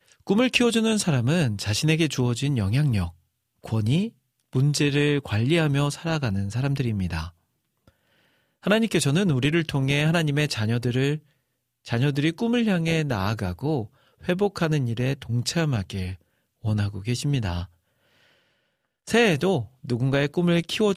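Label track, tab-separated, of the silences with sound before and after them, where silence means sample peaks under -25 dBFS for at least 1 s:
7.240000	8.670000	silence
17.630000	19.100000	silence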